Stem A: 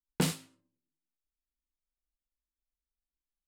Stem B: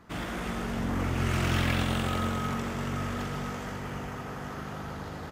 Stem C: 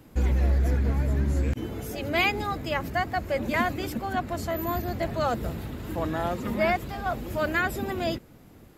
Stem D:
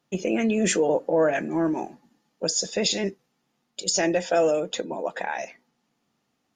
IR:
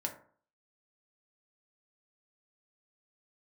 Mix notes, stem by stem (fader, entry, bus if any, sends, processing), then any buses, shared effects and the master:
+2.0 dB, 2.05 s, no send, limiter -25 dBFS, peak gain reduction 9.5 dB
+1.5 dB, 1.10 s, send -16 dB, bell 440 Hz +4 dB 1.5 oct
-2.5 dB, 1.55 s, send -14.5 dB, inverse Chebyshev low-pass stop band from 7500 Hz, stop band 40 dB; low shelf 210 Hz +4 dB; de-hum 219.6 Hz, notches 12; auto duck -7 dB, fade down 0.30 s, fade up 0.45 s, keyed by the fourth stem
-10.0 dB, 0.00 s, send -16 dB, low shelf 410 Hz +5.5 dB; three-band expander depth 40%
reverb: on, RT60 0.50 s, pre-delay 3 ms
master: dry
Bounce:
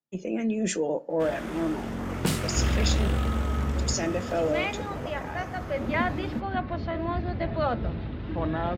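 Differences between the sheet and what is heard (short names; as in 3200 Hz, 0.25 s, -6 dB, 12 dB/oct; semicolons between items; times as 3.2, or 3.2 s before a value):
stem A: missing limiter -25 dBFS, peak gain reduction 9.5 dB; stem B +1.5 dB -> -5.0 dB; stem C: entry 1.55 s -> 2.40 s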